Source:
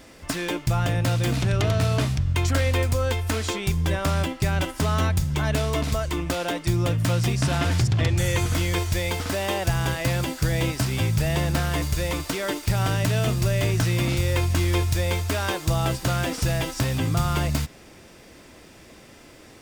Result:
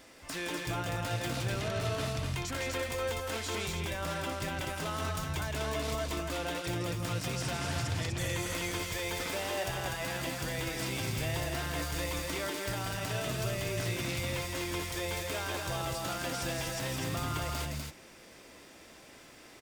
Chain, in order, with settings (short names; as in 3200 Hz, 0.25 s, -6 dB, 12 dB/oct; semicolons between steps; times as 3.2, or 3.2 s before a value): low shelf 280 Hz -9 dB; limiter -21.5 dBFS, peak gain reduction 9 dB; loudspeakers at several distances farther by 57 m -6 dB, 85 m -4 dB; gain -5.5 dB